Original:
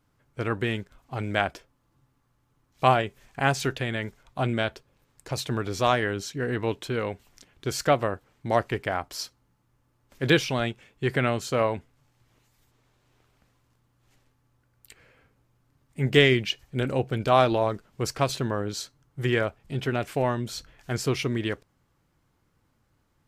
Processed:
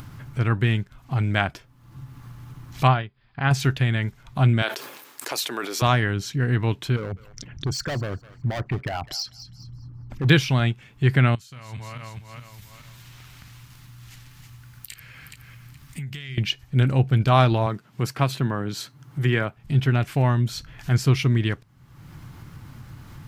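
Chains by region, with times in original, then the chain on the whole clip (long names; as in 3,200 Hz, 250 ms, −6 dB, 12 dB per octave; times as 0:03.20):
0:02.87–0:03.51: Chebyshev low-pass with heavy ripple 5,000 Hz, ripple 3 dB + expander for the loud parts, over −43 dBFS
0:04.62–0:05.82: high-pass filter 340 Hz 24 dB per octave + high-shelf EQ 8,500 Hz +11.5 dB + level that may fall only so fast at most 88 dB per second
0:06.96–0:10.29: spectral envelope exaggerated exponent 2 + hard clipping −27 dBFS + feedback echo with a high-pass in the loop 204 ms, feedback 18%, high-pass 1,000 Hz, level −19.5 dB
0:11.35–0:16.38: feedback delay that plays each chunk backwards 210 ms, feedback 41%, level −7 dB + guitar amp tone stack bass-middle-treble 5-5-5 + downward compressor 8 to 1, threshold −47 dBFS
0:17.66–0:19.57: high-pass filter 150 Hz + dynamic equaliser 5,700 Hz, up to −6 dB, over −47 dBFS, Q 1.1
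whole clip: graphic EQ with 10 bands 125 Hz +9 dB, 500 Hz −8 dB, 8,000 Hz −4 dB; upward compression, threshold −27 dBFS; level +3.5 dB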